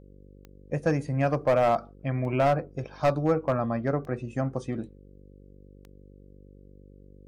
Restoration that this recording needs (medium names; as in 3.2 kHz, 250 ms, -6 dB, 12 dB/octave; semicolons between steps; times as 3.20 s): clip repair -16 dBFS; de-click; de-hum 48.7 Hz, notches 11